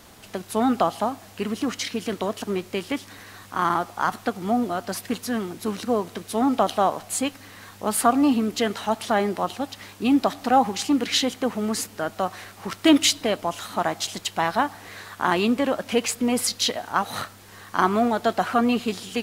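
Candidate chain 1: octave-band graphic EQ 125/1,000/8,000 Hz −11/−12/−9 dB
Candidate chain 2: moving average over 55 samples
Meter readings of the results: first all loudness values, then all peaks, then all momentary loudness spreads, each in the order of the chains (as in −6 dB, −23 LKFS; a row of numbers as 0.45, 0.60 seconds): −28.0, −29.5 LKFS; −7.5, −11.0 dBFS; 11, 15 LU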